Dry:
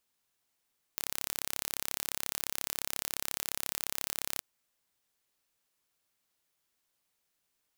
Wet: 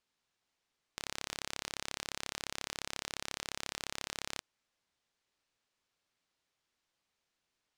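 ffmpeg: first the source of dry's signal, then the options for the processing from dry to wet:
-f lavfi -i "aevalsrc='0.473*eq(mod(n,1286),0)':d=3.44:s=44100"
-af "lowpass=5.7k"

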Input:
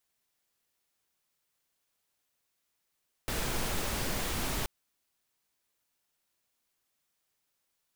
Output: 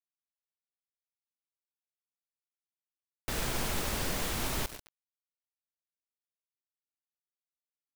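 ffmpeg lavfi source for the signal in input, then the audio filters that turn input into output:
-f lavfi -i "anoisesrc=c=pink:a=0.122:d=1.38:r=44100:seed=1"
-filter_complex "[0:a]asplit=2[a][b];[b]aecho=0:1:141|282|423|564|705|846:0.251|0.143|0.0816|0.0465|0.0265|0.0151[c];[a][c]amix=inputs=2:normalize=0,aeval=exprs='val(0)*gte(abs(val(0)),0.0126)':c=same"

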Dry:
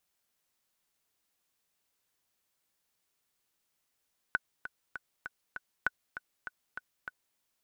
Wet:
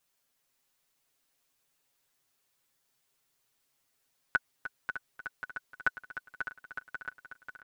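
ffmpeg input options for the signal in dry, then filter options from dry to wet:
-f lavfi -i "aevalsrc='pow(10,(-14-12*gte(mod(t,5*60/198),60/198))/20)*sin(2*PI*1490*mod(t,60/198))*exp(-6.91*mod(t,60/198)/0.03)':d=3.03:s=44100"
-filter_complex "[0:a]aecho=1:1:7.4:0.9,asplit=2[a][b];[b]aecho=0:1:540|1080|1620|2160|2700|3240|3780:0.398|0.231|0.134|0.0777|0.0451|0.0261|0.0152[c];[a][c]amix=inputs=2:normalize=0"

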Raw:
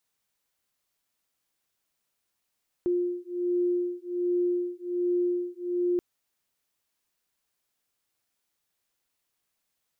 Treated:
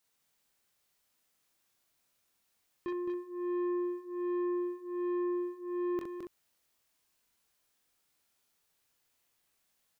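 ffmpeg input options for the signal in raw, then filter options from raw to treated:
-f lavfi -i "aevalsrc='0.0398*(sin(2*PI*353*t)+sin(2*PI*354.3*t))':d=3.13:s=44100"
-filter_complex "[0:a]asplit=2[a][b];[b]aecho=0:1:23|44|64:0.596|0.501|0.376[c];[a][c]amix=inputs=2:normalize=0,asoftclip=type=tanh:threshold=-34dB,asplit=2[d][e];[e]aecho=0:1:215:0.501[f];[d][f]amix=inputs=2:normalize=0"

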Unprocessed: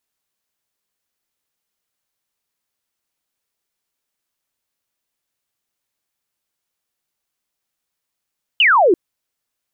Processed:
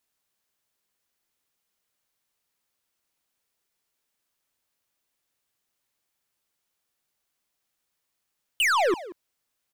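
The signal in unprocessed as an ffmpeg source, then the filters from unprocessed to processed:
-f lavfi -i "aevalsrc='0.355*clip(t/0.002,0,1)*clip((0.34-t)/0.002,0,1)*sin(2*PI*3100*0.34/log(320/3100)*(exp(log(320/3100)*t/0.34)-1))':d=0.34:s=44100"
-filter_complex "[0:a]aeval=exprs='(tanh(11.2*val(0)+0.05)-tanh(0.05))/11.2':c=same,asplit=2[a][b];[b]adelay=180,highpass=300,lowpass=3.4k,asoftclip=type=hard:threshold=-29dB,volume=-8dB[c];[a][c]amix=inputs=2:normalize=0"

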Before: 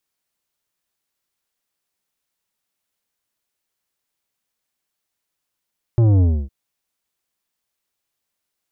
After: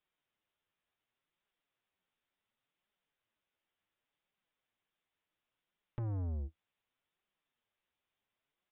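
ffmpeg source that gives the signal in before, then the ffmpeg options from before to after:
-f lavfi -i "aevalsrc='0.251*clip((0.51-t)/0.28,0,1)*tanh(3.35*sin(2*PI*120*0.51/log(65/120)*(exp(log(65/120)*t/0.51)-1)))/tanh(3.35)':d=0.51:s=44100"
-af "acompressor=threshold=-25dB:ratio=10,flanger=delay=4.7:depth=7.9:regen=34:speed=0.69:shape=triangular,aresample=8000,asoftclip=type=tanh:threshold=-34.5dB,aresample=44100"

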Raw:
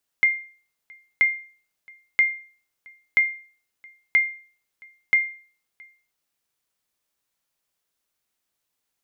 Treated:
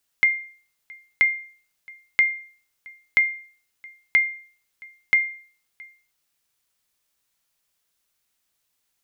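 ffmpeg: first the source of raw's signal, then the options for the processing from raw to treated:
-f lavfi -i "aevalsrc='0.299*(sin(2*PI*2110*mod(t,0.98))*exp(-6.91*mod(t,0.98)/0.42)+0.0376*sin(2*PI*2110*max(mod(t,0.98)-0.67,0))*exp(-6.91*max(mod(t,0.98)-0.67,0)/0.42))':d=5.88:s=44100"
-filter_complex "[0:a]equalizer=f=430:w=0.34:g=-5,asplit=2[a][b];[b]acompressor=threshold=-29dB:ratio=6,volume=-1dB[c];[a][c]amix=inputs=2:normalize=0"

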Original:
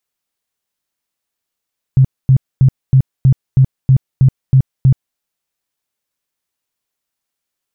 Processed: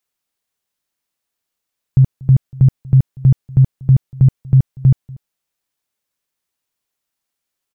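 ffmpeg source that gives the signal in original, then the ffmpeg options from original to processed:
-f lavfi -i "aevalsrc='0.596*sin(2*PI*132*mod(t,0.32))*lt(mod(t,0.32),10/132)':d=3.2:s=44100"
-filter_complex "[0:a]asplit=2[a][b];[b]adelay=239.1,volume=-23dB,highshelf=f=4k:g=-5.38[c];[a][c]amix=inputs=2:normalize=0"

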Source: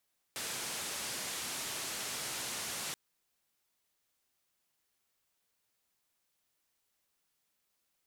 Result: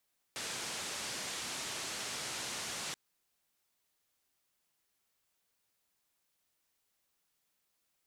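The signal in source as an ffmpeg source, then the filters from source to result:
-f lavfi -i "anoisesrc=c=white:d=2.58:r=44100:seed=1,highpass=f=95,lowpass=f=9900,volume=-31.2dB"
-filter_complex "[0:a]acrossover=split=9600[a][b];[b]acompressor=threshold=-60dB:ratio=4:attack=1:release=60[c];[a][c]amix=inputs=2:normalize=0"

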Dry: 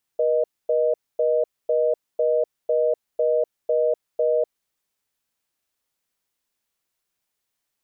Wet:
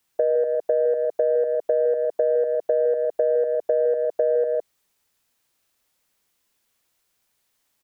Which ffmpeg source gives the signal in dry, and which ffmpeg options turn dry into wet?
-f lavfi -i "aevalsrc='0.1*(sin(2*PI*480*t)+sin(2*PI*620*t))*clip(min(mod(t,0.5),0.25-mod(t,0.5))/0.005,0,1)':d=4.31:s=44100"
-filter_complex "[0:a]acontrast=75,aecho=1:1:110.8|160.3:0.316|0.501,acrossover=split=280|650[a][b][c];[a]acompressor=threshold=-40dB:ratio=4[d];[b]acompressor=threshold=-24dB:ratio=4[e];[c]acompressor=threshold=-27dB:ratio=4[f];[d][e][f]amix=inputs=3:normalize=0"

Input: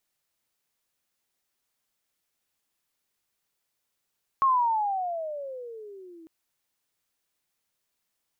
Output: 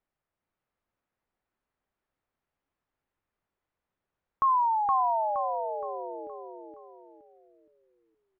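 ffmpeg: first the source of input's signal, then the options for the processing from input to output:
-f lavfi -i "aevalsrc='pow(10,(-17.5-28*t/1.85)/20)*sin(2*PI*1100*1.85/(-21.5*log(2)/12)*(exp(-21.5*log(2)/12*t/1.85)-1))':d=1.85:s=44100"
-filter_complex "[0:a]lowpass=1.5k,lowshelf=f=85:g=7.5,asplit=2[a][b];[b]aecho=0:1:469|938|1407|1876|2345:0.708|0.283|0.113|0.0453|0.0181[c];[a][c]amix=inputs=2:normalize=0"

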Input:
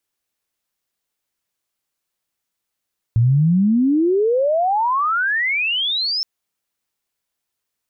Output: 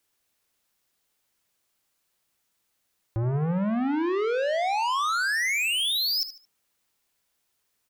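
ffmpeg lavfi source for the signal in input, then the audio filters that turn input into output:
-f lavfi -i "aevalsrc='pow(10,(-11-7.5*t/3.07)/20)*sin(2*PI*110*3.07/log(5400/110)*(exp(log(5400/110)*t/3.07)-1))':d=3.07:s=44100"
-filter_complex "[0:a]asplit=2[a][b];[b]alimiter=limit=-21.5dB:level=0:latency=1,volume=-3dB[c];[a][c]amix=inputs=2:normalize=0,asoftclip=type=tanh:threshold=-25dB,aecho=1:1:74|148|222:0.251|0.0703|0.0197"

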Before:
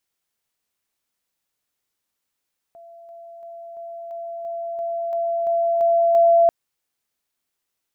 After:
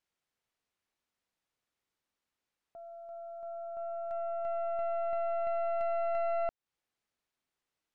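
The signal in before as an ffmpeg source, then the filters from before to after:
-f lavfi -i "aevalsrc='pow(10,(-41+3*floor(t/0.34))/20)*sin(2*PI*677*t)':d=3.74:s=44100"
-af "aemphasis=mode=reproduction:type=50fm,acompressor=threshold=-28dB:ratio=5,aeval=exprs='(tanh(25.1*val(0)+0.65)-tanh(0.65))/25.1':c=same"

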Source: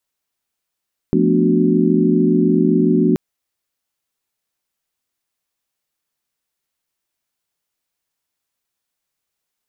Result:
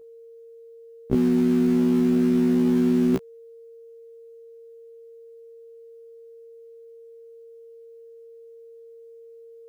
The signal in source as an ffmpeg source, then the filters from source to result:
-f lavfi -i "aevalsrc='0.126*(sin(2*PI*174.61*t)+sin(2*PI*220*t)+sin(2*PI*246.94*t)+sin(2*PI*293.66*t)+sin(2*PI*369.99*t))':d=2.03:s=44100"
-filter_complex "[0:a]aeval=exprs='val(0)+0.00631*sin(2*PI*460*n/s)':c=same,asplit=2[a][b];[b]aeval=exprs='val(0)*gte(abs(val(0)),0.106)':c=same,volume=-10.5dB[c];[a][c]amix=inputs=2:normalize=0,afftfilt=real='re*1.73*eq(mod(b,3),0)':imag='im*1.73*eq(mod(b,3),0)':win_size=2048:overlap=0.75"

